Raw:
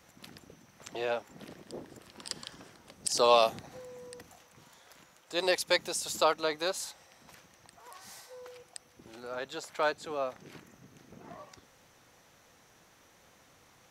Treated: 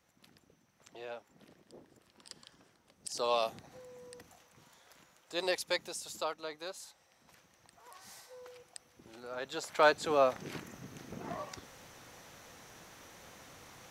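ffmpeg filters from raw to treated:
-af "volume=5.01,afade=t=in:st=2.91:d=1.24:silence=0.398107,afade=t=out:st=5.34:d=0.97:silence=0.446684,afade=t=in:st=6.9:d=1.17:silence=0.421697,afade=t=in:st=9.35:d=0.82:silence=0.298538"

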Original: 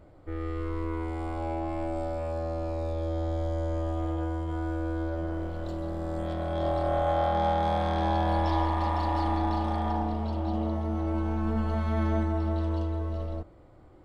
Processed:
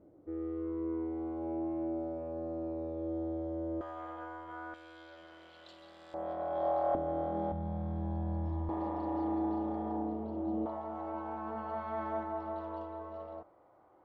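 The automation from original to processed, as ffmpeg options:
-af "asetnsamples=n=441:p=0,asendcmd='3.81 bandpass f 1300;4.74 bandpass f 3200;6.14 bandpass f 760;6.95 bandpass f 300;7.52 bandpass f 140;8.69 bandpass f 370;10.66 bandpass f 880',bandpass=f=320:t=q:w=1.6:csg=0"

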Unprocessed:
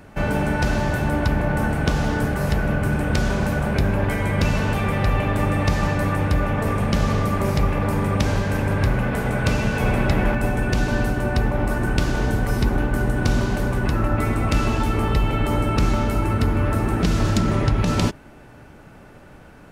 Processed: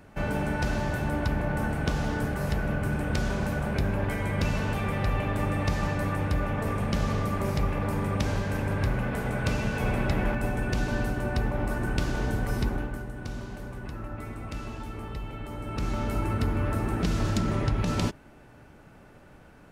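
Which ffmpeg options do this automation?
-af "volume=1.33,afade=t=out:st=12.61:d=0.44:silence=0.334965,afade=t=in:st=15.58:d=0.58:silence=0.334965"

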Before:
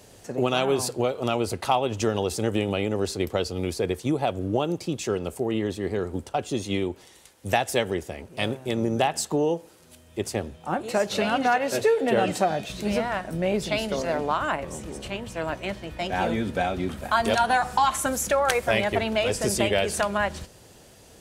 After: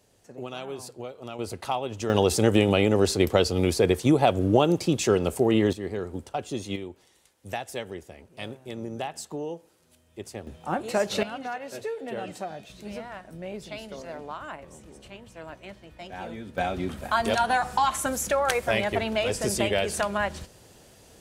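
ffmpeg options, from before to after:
-af "asetnsamples=n=441:p=0,asendcmd='1.39 volume volume -6dB;2.1 volume volume 5dB;5.73 volume volume -4dB;6.76 volume volume -10dB;10.47 volume volume -1dB;11.23 volume volume -12dB;16.58 volume volume -2dB',volume=0.224"

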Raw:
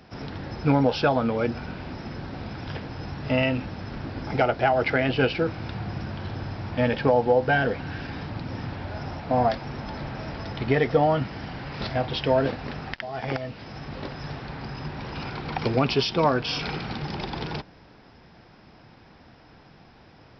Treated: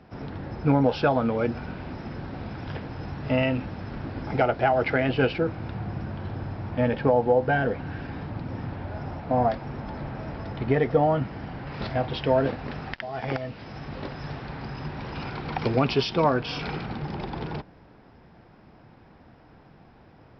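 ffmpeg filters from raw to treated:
-af "asetnsamples=n=441:p=0,asendcmd='0.84 lowpass f 2500;5.38 lowpass f 1400;11.67 lowpass f 2400;12.71 lowpass f 3800;16.22 lowpass f 2300;16.86 lowpass f 1400',lowpass=f=1500:p=1"

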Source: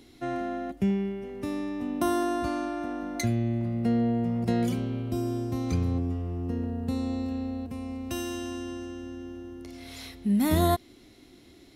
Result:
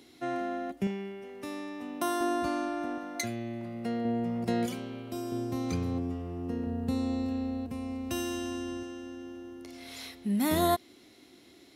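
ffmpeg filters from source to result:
-af "asetnsamples=n=441:p=0,asendcmd='0.87 highpass f 660;2.21 highpass f 210;2.98 highpass f 580;4.05 highpass f 270;4.66 highpass f 580;5.32 highpass f 200;6.67 highpass f 80;8.83 highpass f 300',highpass=f=270:p=1"

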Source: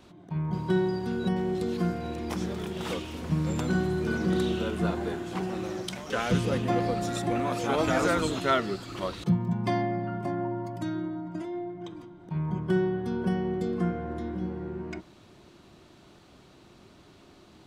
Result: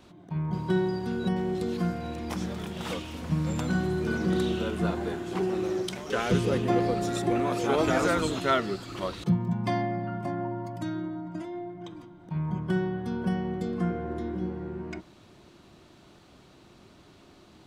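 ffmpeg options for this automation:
-af "asetnsamples=n=441:p=0,asendcmd='1.79 equalizer g -8.5;3.83 equalizer g 0;5.28 equalizer g 9.5;7.98 equalizer g 0.5;9.49 equalizer g -6;13.9 equalizer g 5.5;14.5 equalizer g -1',equalizer=f=390:t=o:w=0.26:g=-1"

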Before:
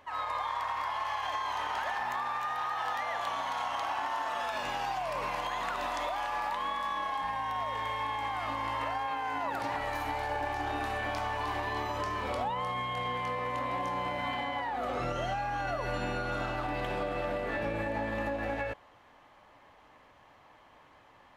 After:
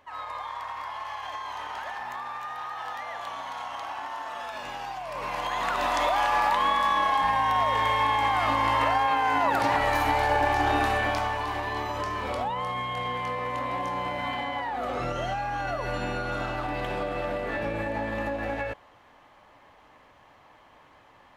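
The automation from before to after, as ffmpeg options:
-af "volume=3.16,afade=t=in:st=5.07:d=1.13:silence=0.251189,afade=t=out:st=10.77:d=0.68:silence=0.446684"

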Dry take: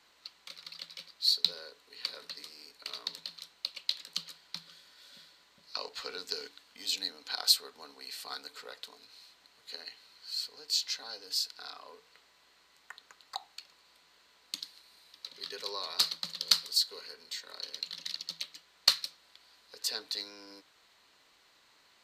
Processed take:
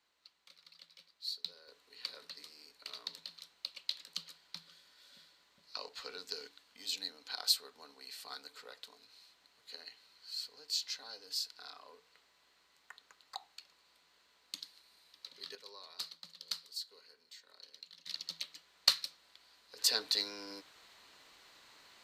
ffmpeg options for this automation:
-af "asetnsamples=n=441:p=0,asendcmd='1.68 volume volume -5.5dB;15.55 volume volume -14.5dB;18.07 volume volume -3dB;19.78 volume volume 4dB',volume=0.211"

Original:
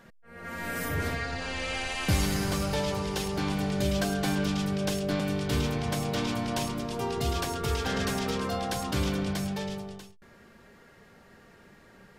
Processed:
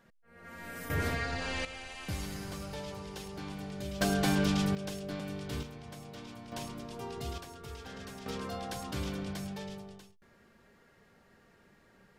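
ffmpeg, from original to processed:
-af "asetnsamples=n=441:p=0,asendcmd='0.9 volume volume -1.5dB;1.65 volume volume -12dB;4.01 volume volume 0dB;4.75 volume volume -10dB;5.63 volume volume -17dB;6.52 volume volume -10dB;7.38 volume volume -16dB;8.26 volume volume -8dB',volume=0.316"

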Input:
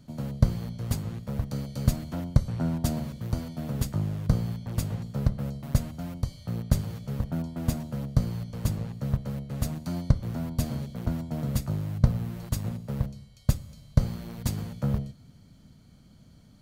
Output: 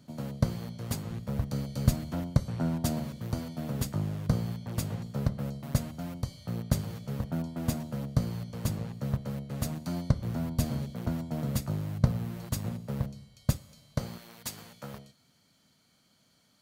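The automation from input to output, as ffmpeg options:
-af "asetnsamples=n=441:p=0,asendcmd='1.11 highpass f 46;2.23 highpass f 130;10.18 highpass f 46;10.92 highpass f 120;13.57 highpass f 390;14.18 highpass f 1200',highpass=f=190:p=1"

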